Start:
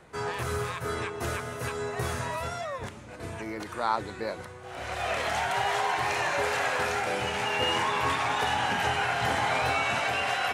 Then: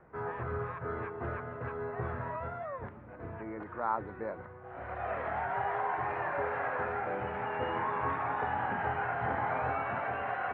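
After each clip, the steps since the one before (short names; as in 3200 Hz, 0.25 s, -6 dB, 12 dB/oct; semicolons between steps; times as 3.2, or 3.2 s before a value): LPF 1700 Hz 24 dB/oct; gain -4.5 dB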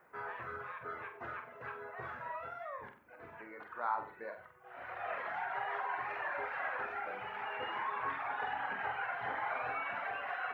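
reverb removal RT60 1.1 s; tilt +4.5 dB/oct; flutter echo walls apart 8 m, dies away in 0.41 s; gain -3 dB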